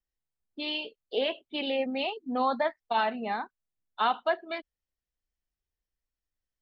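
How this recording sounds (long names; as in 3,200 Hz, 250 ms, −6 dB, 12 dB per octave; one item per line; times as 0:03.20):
background noise floor −91 dBFS
spectral slope 0.0 dB per octave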